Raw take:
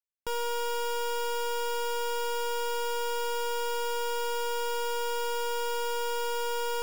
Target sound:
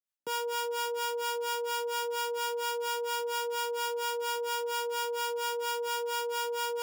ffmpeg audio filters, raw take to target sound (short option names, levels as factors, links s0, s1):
-filter_complex "[0:a]acrossover=split=630[s0][s1];[s0]aeval=exprs='val(0)*(1-1/2+1/2*cos(2*PI*4.3*n/s))':c=same[s2];[s1]aeval=exprs='val(0)*(1-1/2-1/2*cos(2*PI*4.3*n/s))':c=same[s3];[s2][s3]amix=inputs=2:normalize=0,acrossover=split=160|880|5100[s4][s5][s6][s7];[s4]acrusher=bits=4:dc=4:mix=0:aa=0.000001[s8];[s8][s5][s6][s7]amix=inputs=4:normalize=0,volume=1.58"